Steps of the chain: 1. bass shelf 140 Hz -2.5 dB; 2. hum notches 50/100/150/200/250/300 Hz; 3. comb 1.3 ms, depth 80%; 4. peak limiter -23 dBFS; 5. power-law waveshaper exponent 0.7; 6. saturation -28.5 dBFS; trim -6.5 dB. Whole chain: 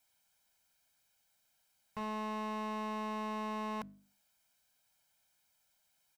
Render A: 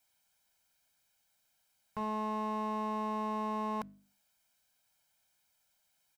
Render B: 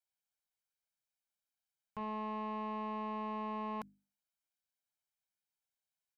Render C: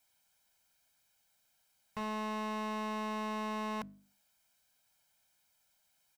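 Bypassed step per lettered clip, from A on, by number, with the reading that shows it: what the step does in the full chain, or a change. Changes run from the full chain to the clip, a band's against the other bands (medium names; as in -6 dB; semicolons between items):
6, distortion -16 dB; 5, 4 kHz band -5.5 dB; 4, mean gain reduction 2.5 dB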